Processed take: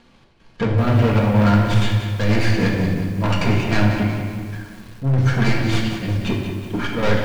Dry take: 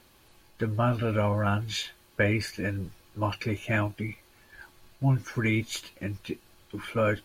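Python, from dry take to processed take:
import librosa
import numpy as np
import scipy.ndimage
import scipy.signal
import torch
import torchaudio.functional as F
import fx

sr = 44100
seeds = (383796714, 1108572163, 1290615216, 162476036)

y = fx.tracing_dist(x, sr, depth_ms=0.31)
y = fx.peak_eq(y, sr, hz=190.0, db=4.5, octaves=0.71)
y = fx.leveller(y, sr, passes=2)
y = fx.step_gate(y, sr, bpm=190, pattern='xxx..xxxxx.x', floor_db=-12.0, edge_ms=4.5)
y = 10.0 ** (-26.0 / 20.0) * np.tanh(y / 10.0 ** (-26.0 / 20.0))
y = fx.air_absorb(y, sr, metres=110.0)
y = fx.room_shoebox(y, sr, seeds[0], volume_m3=1100.0, walls='mixed', distance_m=1.7)
y = fx.echo_crushed(y, sr, ms=184, feedback_pct=55, bits=8, wet_db=-9.0)
y = F.gain(torch.from_numpy(y), 8.0).numpy()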